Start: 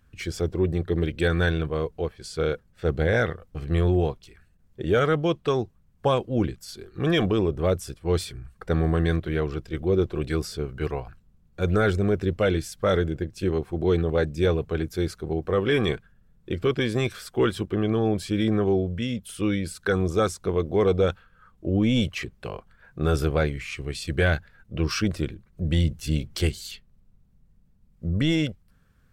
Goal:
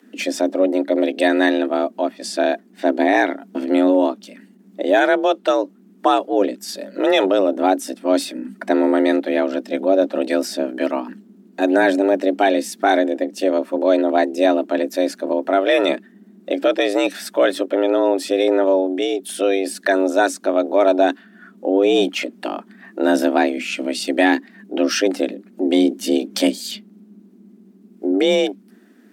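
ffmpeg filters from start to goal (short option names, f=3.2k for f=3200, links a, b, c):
-filter_complex "[0:a]asplit=2[a][b];[b]acompressor=threshold=-33dB:ratio=6,volume=0dB[c];[a][c]amix=inputs=2:normalize=0,afreqshift=190,volume=4.5dB"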